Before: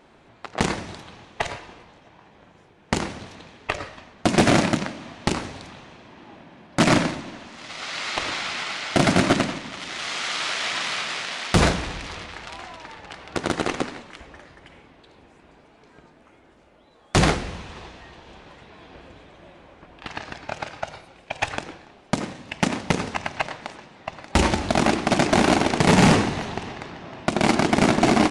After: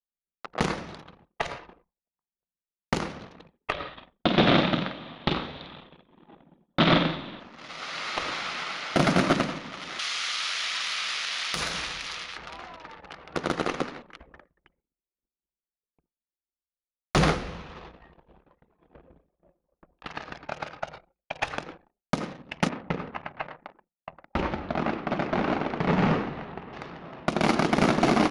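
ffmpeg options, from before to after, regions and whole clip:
-filter_complex "[0:a]asettb=1/sr,asplit=3[a][b][c];[a]atrim=end=3.724[d];[b]atrim=start=3.72:end=7.4,asetpts=PTS-STARTPTS,afade=t=in:d=0.004:c=qsin,afade=t=out:st=3.676:d=0.004:c=qsin,lowpass=f=3.6k:t=q:w=5.8,aemphasis=mode=reproduction:type=75kf,asplit=2[e][f];[f]adelay=49,volume=-8dB[g];[e][g]amix=inputs=2:normalize=0,atrim=end_sample=162288[h];[c]atrim=start=7.396[i];[d][h]acrossfade=d=0.004:c1=hsin:c2=qsin[j];[j][i]acrossfade=d=0.004:c1=qsin:c2=hsin,asettb=1/sr,asplit=3[k][l][m];[k]atrim=end=9.994[n];[l]atrim=start=9.99:end=12.37,asetpts=PTS-STARTPTS,afade=t=in:d=0.004:c=qsin,afade=t=out:st=2.376:d=0.004:c=qsin,tiltshelf=f=1.2k:g=-10,acompressor=threshold=-21dB:ratio=6:attack=3.2:release=140:knee=1:detection=peak[o];[m]atrim=start=12.366[p];[n][o]acrossfade=d=0.004:c1=hsin:c2=qsin[q];[q][p]acrossfade=d=0.004:c1=qsin:c2=hsin,asettb=1/sr,asplit=3[r][s][t];[r]atrim=end=22.694[u];[s]atrim=start=22.69:end=26.73,asetpts=PTS-STARTPTS,afade=t=in:d=0.004:c=qsin,afade=t=out:st=4.036:d=0.004:c=qsin,lowpass=2.7k,flanger=delay=6.4:depth=5.8:regen=-74:speed=1.7:shape=triangular[v];[t]atrim=start=26.726[w];[u][v]acrossfade=d=0.004:c1=hsin:c2=qsin[x];[x][w]acrossfade=d=0.004:c1=qsin:c2=hsin,anlmdn=0.251,agate=range=-33dB:threshold=-47dB:ratio=3:detection=peak,equalizer=f=100:t=o:w=0.33:g=-9,equalizer=f=160:t=o:w=0.33:g=4,equalizer=f=500:t=o:w=0.33:g=4,equalizer=f=1.25k:t=o:w=0.33:g=5,equalizer=f=8k:t=o:w=0.33:g=-11,volume=-4.5dB"

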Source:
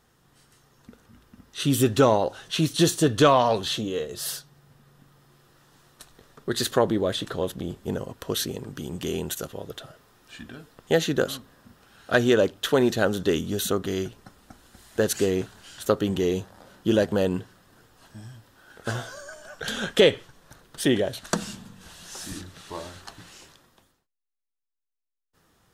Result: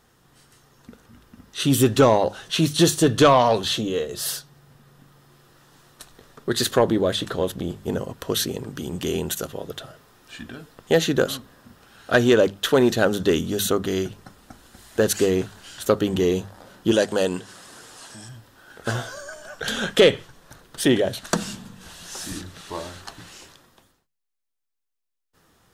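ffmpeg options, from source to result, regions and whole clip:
-filter_complex "[0:a]asettb=1/sr,asplit=3[a][b][c];[a]atrim=end=16.924[d];[b]atrim=start=16.92:end=18.29,asetpts=PTS-STARTPTS,afade=t=in:d=0.004:c=qsin,afade=t=out:st=1.366:d=0.004:c=qsin,lowpass=f=9.1k:w=0.5412,lowpass=f=9.1k:w=1.3066,aemphasis=mode=production:type=bsi,acompressor=mode=upward:threshold=-38dB:ratio=2.5:attack=3.2:release=140:knee=2.83:detection=peak[e];[c]atrim=start=18.286[f];[d][e]acrossfade=d=0.004:c1=hsin:c2=qsin[g];[g][f]acrossfade=d=0.004:c1=qsin:c2=hsin,bandreject=f=50:t=h:w=6,bandreject=f=100:t=h:w=6,bandreject=f=150:t=h:w=6,bandreject=f=200:t=h:w=6,acontrast=64,volume=-2.5dB"

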